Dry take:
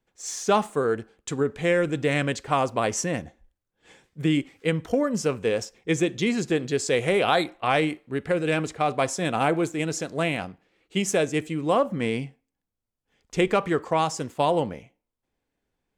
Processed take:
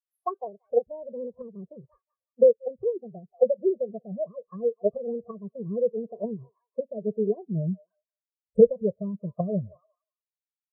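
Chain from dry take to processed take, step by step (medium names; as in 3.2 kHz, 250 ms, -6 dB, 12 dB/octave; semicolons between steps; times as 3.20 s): gliding tape speed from 183% -> 115%; Butterworth band-stop 4.2 kHz, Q 0.61; peaking EQ 220 Hz +3.5 dB 1.1 oct; level rider gain up to 7.5 dB; thinning echo 179 ms, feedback 52%, high-pass 780 Hz, level -14 dB; low-pass that closes with the level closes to 310 Hz, closed at -15 dBFS; peaking EQ 83 Hz +7 dB 1.1 oct; comb 1.8 ms, depth 88%; spectral contrast expander 2.5:1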